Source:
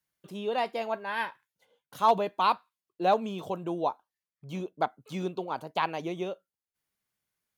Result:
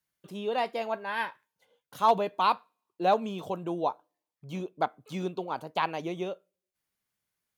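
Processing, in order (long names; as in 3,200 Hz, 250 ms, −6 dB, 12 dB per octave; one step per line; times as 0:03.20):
on a send: high-pass filter 280 Hz + convolution reverb RT60 0.40 s, pre-delay 3 ms, DRR 23 dB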